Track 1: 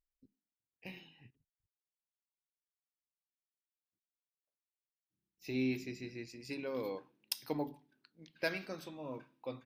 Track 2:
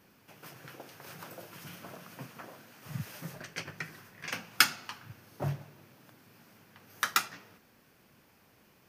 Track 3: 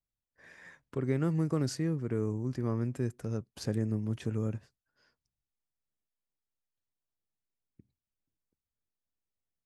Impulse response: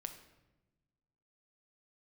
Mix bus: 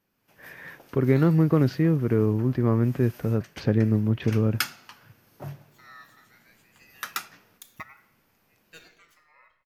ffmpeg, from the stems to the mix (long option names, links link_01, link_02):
-filter_complex "[0:a]highshelf=frequency=6800:gain=11.5,aeval=exprs='val(0)*sin(2*PI*1900*n/s+1900*0.2/0.61*sin(2*PI*0.61*n/s))':channel_layout=same,adelay=300,volume=-8.5dB,asplit=2[link_01][link_02];[link_02]volume=-11.5dB[link_03];[1:a]equalizer=frequency=12000:width=7.8:gain=9,volume=-14.5dB[link_04];[2:a]lowpass=frequency=3600:width=0.5412,lowpass=frequency=3600:width=1.3066,volume=0dB,asplit=2[link_05][link_06];[link_06]apad=whole_len=438796[link_07];[link_01][link_07]sidechaingate=range=-33dB:threshold=-56dB:ratio=16:detection=peak[link_08];[3:a]atrim=start_sample=2205[link_09];[link_03][link_09]afir=irnorm=-1:irlink=0[link_10];[link_08][link_04][link_05][link_10]amix=inputs=4:normalize=0,dynaudnorm=framelen=110:gausssize=5:maxgain=10dB"